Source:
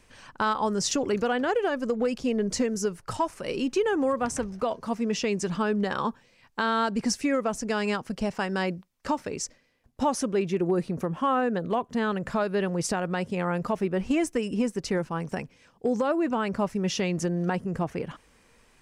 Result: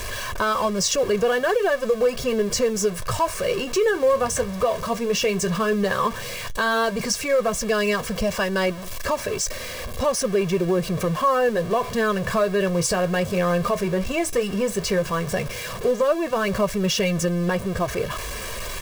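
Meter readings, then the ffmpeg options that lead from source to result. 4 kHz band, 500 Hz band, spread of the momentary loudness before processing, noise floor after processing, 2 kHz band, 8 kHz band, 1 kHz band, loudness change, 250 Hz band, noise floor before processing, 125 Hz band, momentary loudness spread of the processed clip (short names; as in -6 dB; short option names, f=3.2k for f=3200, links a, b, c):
+8.0 dB, +7.0 dB, 6 LU, -32 dBFS, +7.0 dB, +8.0 dB, +4.0 dB, +5.0 dB, +1.0 dB, -61 dBFS, +5.5 dB, 5 LU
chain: -filter_complex "[0:a]aeval=exprs='val(0)+0.5*0.0266*sgn(val(0))':c=same,aecho=1:1:1.8:0.78,flanger=delay=3:depth=8.7:regen=-58:speed=0.11:shape=sinusoidal,asplit=2[a][b];[b]alimiter=limit=-21.5dB:level=0:latency=1:release=229,volume=3dB[c];[a][c]amix=inputs=2:normalize=0"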